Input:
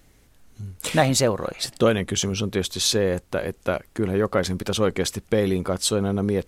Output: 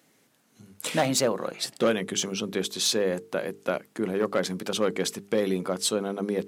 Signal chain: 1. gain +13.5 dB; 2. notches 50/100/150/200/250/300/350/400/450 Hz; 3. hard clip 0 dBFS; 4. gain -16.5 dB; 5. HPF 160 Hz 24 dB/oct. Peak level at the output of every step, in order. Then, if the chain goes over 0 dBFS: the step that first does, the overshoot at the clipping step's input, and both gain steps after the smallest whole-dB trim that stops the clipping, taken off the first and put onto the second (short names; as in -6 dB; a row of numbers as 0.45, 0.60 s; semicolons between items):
+9.0, +7.5, 0.0, -16.5, -10.5 dBFS; step 1, 7.5 dB; step 1 +5.5 dB, step 4 -8.5 dB